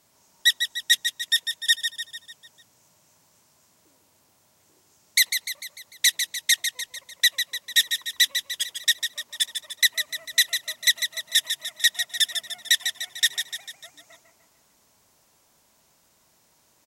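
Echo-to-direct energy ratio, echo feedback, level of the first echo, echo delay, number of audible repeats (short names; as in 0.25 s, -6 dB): -6.0 dB, 52%, -7.5 dB, 0.149 s, 5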